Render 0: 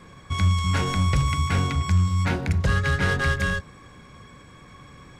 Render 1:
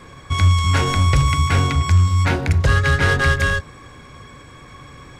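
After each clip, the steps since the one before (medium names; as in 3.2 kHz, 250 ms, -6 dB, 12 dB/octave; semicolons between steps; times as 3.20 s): peaking EQ 190 Hz -11 dB 0.26 oct; trim +6.5 dB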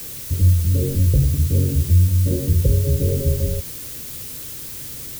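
steep low-pass 560 Hz 96 dB/octave; added noise blue -33 dBFS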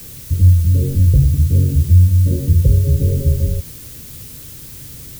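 tone controls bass +8 dB, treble 0 dB; trim -3 dB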